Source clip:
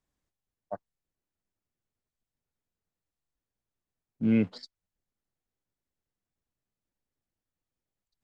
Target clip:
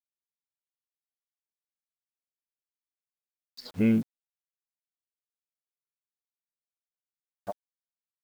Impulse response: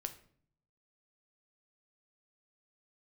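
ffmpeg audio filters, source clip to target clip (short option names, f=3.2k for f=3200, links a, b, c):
-af "areverse,acrusher=bits=8:mix=0:aa=0.000001,volume=1dB"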